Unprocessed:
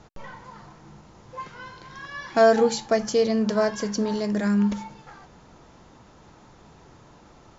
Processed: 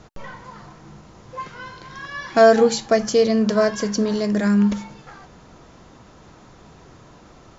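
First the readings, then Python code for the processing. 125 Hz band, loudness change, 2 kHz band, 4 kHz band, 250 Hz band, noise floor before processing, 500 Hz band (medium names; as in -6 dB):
+4.5 dB, +4.5 dB, +4.5 dB, +4.5 dB, +4.5 dB, -52 dBFS, +4.5 dB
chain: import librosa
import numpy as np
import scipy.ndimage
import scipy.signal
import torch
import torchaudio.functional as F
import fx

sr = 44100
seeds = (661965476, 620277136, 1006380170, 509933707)

y = fx.notch(x, sr, hz=870.0, q=12.0)
y = y * librosa.db_to_amplitude(4.5)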